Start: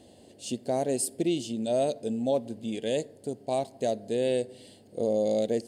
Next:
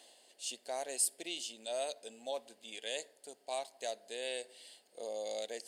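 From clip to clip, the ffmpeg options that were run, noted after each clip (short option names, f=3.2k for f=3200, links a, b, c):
-af "highpass=1.1k,areverse,acompressor=mode=upward:threshold=-51dB:ratio=2.5,areverse,volume=-1dB"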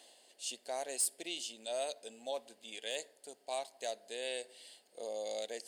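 -af "volume=26dB,asoftclip=hard,volume=-26dB"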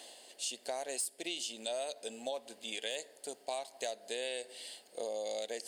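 -af "acompressor=threshold=-43dB:ratio=6,volume=8dB"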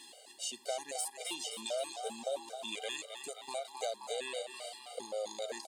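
-filter_complex "[0:a]asplit=9[a][b][c][d][e][f][g][h][i];[b]adelay=264,afreqshift=110,volume=-7.5dB[j];[c]adelay=528,afreqshift=220,volume=-11.9dB[k];[d]adelay=792,afreqshift=330,volume=-16.4dB[l];[e]adelay=1056,afreqshift=440,volume=-20.8dB[m];[f]adelay=1320,afreqshift=550,volume=-25.2dB[n];[g]adelay=1584,afreqshift=660,volume=-29.7dB[o];[h]adelay=1848,afreqshift=770,volume=-34.1dB[p];[i]adelay=2112,afreqshift=880,volume=-38.6dB[q];[a][j][k][l][m][n][o][p][q]amix=inputs=9:normalize=0,afftfilt=real='re*gt(sin(2*PI*3.8*pts/sr)*(1-2*mod(floor(b*sr/1024/400),2)),0)':imag='im*gt(sin(2*PI*3.8*pts/sr)*(1-2*mod(floor(b*sr/1024/400),2)),0)':win_size=1024:overlap=0.75,volume=2dB"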